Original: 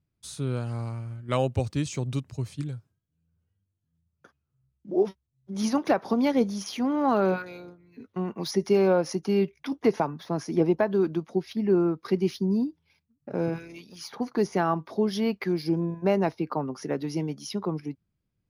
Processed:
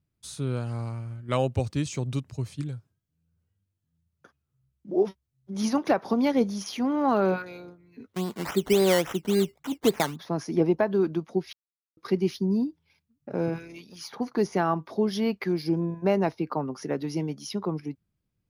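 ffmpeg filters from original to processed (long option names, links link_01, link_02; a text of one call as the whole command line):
ffmpeg -i in.wav -filter_complex "[0:a]asplit=3[link_01][link_02][link_03];[link_01]afade=type=out:start_time=8.13:duration=0.02[link_04];[link_02]acrusher=samples=14:mix=1:aa=0.000001:lfo=1:lforange=8.4:lforate=3.6,afade=type=in:start_time=8.13:duration=0.02,afade=type=out:start_time=10.15:duration=0.02[link_05];[link_03]afade=type=in:start_time=10.15:duration=0.02[link_06];[link_04][link_05][link_06]amix=inputs=3:normalize=0,asplit=3[link_07][link_08][link_09];[link_07]atrim=end=11.53,asetpts=PTS-STARTPTS,afade=type=out:start_time=11.526:duration=0.004:curve=hsin[link_10];[link_08]atrim=start=11.53:end=11.97,asetpts=PTS-STARTPTS,volume=0[link_11];[link_09]atrim=start=11.97,asetpts=PTS-STARTPTS,afade=type=in:duration=0.004:curve=hsin[link_12];[link_10][link_11][link_12]concat=n=3:v=0:a=1" out.wav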